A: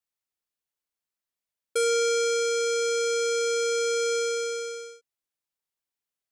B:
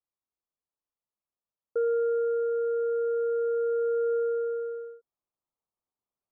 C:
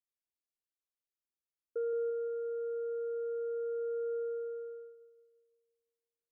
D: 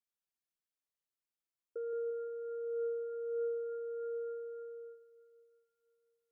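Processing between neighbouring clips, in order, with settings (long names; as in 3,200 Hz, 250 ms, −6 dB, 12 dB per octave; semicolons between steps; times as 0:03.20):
Butterworth low-pass 1,300 Hz 72 dB per octave; in parallel at +0.5 dB: speech leveller 2 s; on the sum: level −6.5 dB
phaser with its sweep stopped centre 360 Hz, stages 4; on a send: feedback echo with a low-pass in the loop 172 ms, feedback 55%, low-pass 990 Hz, level −7 dB; on the sum: level −7 dB
flanger 0.48 Hz, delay 4.7 ms, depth 2.4 ms, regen +51%; on a send at −12 dB: convolution reverb RT60 3.8 s, pre-delay 139 ms; on the sum: level +1.5 dB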